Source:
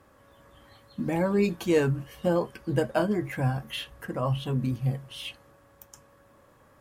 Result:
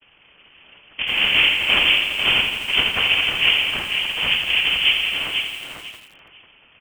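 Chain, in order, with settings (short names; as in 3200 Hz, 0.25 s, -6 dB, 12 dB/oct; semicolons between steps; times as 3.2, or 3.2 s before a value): half-waves squared off; gate with hold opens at -50 dBFS; band shelf 540 Hz -12.5 dB 1.1 oct; noise vocoder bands 2; feedback echo 0.495 s, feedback 22%, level -6 dB; on a send at -11 dB: reverb RT60 0.45 s, pre-delay 41 ms; on the sum: inverted band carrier 3300 Hz; lo-fi delay 84 ms, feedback 80%, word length 7-bit, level -8.5 dB; gain +4 dB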